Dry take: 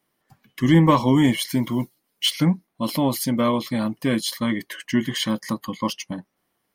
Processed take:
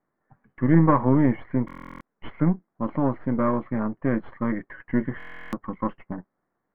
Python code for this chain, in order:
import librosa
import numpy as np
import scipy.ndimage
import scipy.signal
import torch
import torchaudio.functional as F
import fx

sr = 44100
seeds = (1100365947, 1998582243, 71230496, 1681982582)

y = np.where(x < 0.0, 10.0 ** (-7.0 / 20.0) * x, x)
y = scipy.signal.sosfilt(scipy.signal.butter(6, 1800.0, 'lowpass', fs=sr, output='sos'), y)
y = fx.buffer_glitch(y, sr, at_s=(1.66, 5.18), block=1024, repeats=14)